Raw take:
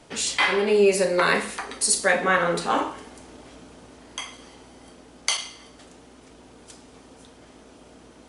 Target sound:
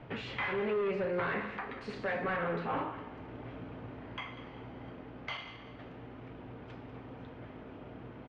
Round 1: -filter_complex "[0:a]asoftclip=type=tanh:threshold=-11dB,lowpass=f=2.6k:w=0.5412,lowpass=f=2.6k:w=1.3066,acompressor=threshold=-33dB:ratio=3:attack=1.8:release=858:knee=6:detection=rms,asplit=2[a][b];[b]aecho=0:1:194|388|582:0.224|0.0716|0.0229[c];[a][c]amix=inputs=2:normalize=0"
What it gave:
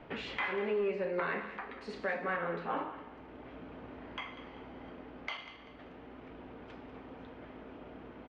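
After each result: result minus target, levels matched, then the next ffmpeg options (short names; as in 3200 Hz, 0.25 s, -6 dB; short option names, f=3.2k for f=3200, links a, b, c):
soft clip: distortion -12 dB; 125 Hz band -7.5 dB
-filter_complex "[0:a]asoftclip=type=tanh:threshold=-21.5dB,lowpass=f=2.6k:w=0.5412,lowpass=f=2.6k:w=1.3066,acompressor=threshold=-33dB:ratio=3:attack=1.8:release=858:knee=6:detection=rms,asplit=2[a][b];[b]aecho=0:1:194|388|582:0.224|0.0716|0.0229[c];[a][c]amix=inputs=2:normalize=0"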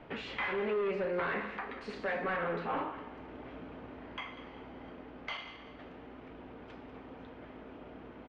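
125 Hz band -6.5 dB
-filter_complex "[0:a]asoftclip=type=tanh:threshold=-21.5dB,lowpass=f=2.6k:w=0.5412,lowpass=f=2.6k:w=1.3066,acompressor=threshold=-33dB:ratio=3:attack=1.8:release=858:knee=6:detection=rms,equalizer=f=120:t=o:w=0.65:g=12.5,asplit=2[a][b];[b]aecho=0:1:194|388|582:0.224|0.0716|0.0229[c];[a][c]amix=inputs=2:normalize=0"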